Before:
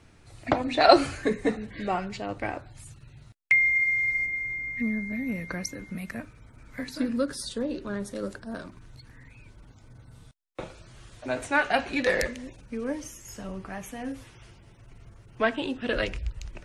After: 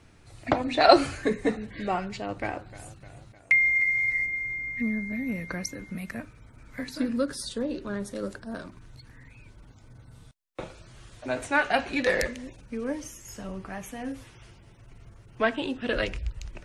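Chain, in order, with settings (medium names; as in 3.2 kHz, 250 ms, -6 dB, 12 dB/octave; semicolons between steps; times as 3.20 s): 2.06–4.23 s: modulated delay 306 ms, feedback 61%, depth 78 cents, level -16.5 dB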